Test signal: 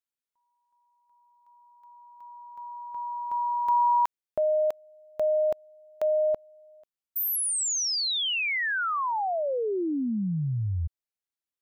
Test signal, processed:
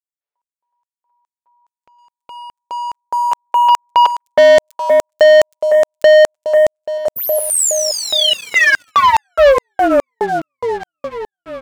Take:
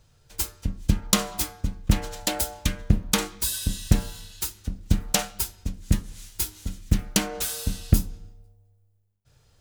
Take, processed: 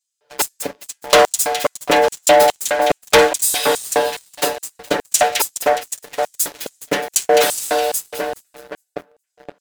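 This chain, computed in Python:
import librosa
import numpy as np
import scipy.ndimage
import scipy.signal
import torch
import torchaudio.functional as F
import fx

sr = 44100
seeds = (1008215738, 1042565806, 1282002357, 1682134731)

y = fx.bass_treble(x, sr, bass_db=-9, treble_db=-14)
y = y + 0.89 * np.pad(y, (int(6.9 * sr / 1000.0), 0))[:len(y)]
y = fx.echo_split(y, sr, split_hz=1900.0, low_ms=519, high_ms=208, feedback_pct=52, wet_db=-9)
y = fx.filter_lfo_highpass(y, sr, shape='square', hz=2.4, low_hz=520.0, high_hz=7600.0, q=2.4)
y = fx.leveller(y, sr, passes=3)
y = F.gain(torch.from_numpy(y), 5.5).numpy()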